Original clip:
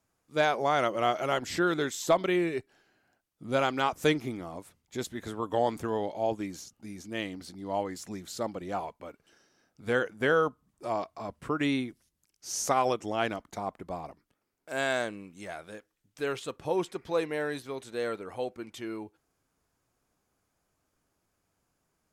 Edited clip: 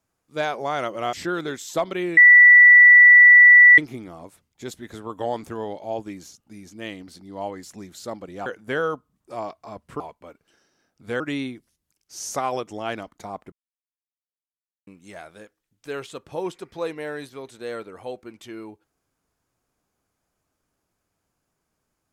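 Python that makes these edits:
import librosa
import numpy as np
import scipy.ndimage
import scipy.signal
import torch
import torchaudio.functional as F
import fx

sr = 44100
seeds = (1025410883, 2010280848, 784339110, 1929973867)

y = fx.edit(x, sr, fx.cut(start_s=1.13, length_s=0.33),
    fx.bleep(start_s=2.5, length_s=1.61, hz=1960.0, db=-6.5),
    fx.move(start_s=8.79, length_s=1.2, to_s=11.53),
    fx.silence(start_s=13.85, length_s=1.35), tone=tone)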